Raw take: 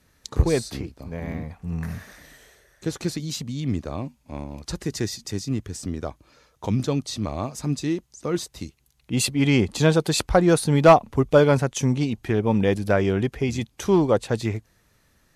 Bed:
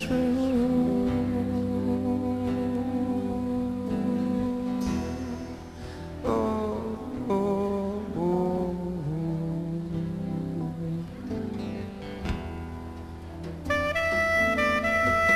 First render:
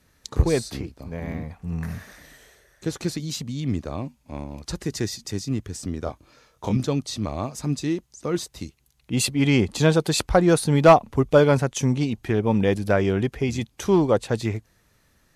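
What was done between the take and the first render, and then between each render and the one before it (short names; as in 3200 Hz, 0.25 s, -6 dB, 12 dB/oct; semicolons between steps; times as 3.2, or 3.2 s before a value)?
6.04–6.77 doubler 24 ms -4.5 dB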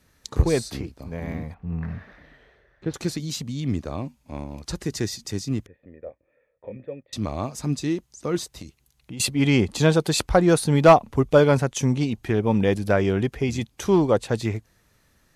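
1.54–2.94 air absorption 370 m; 5.66–7.13 vocal tract filter e; 8.56–9.2 compressor 12:1, threshold -32 dBFS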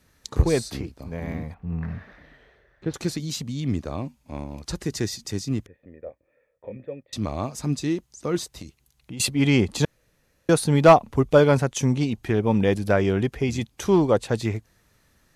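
9.85–10.49 room tone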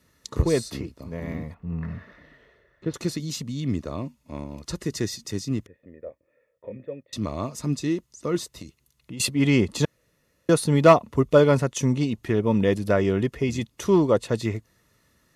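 notch comb 790 Hz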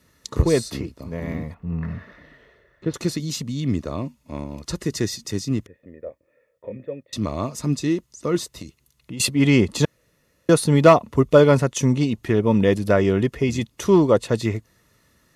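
gain +3.5 dB; limiter -2 dBFS, peak gain reduction 3 dB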